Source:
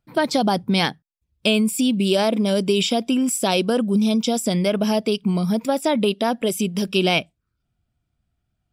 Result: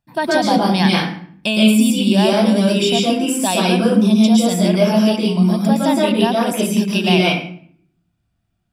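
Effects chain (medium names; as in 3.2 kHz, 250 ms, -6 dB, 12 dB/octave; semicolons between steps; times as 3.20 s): bass shelf 83 Hz -10 dB; reverberation RT60 0.55 s, pre-delay 111 ms, DRR -3 dB; trim -1 dB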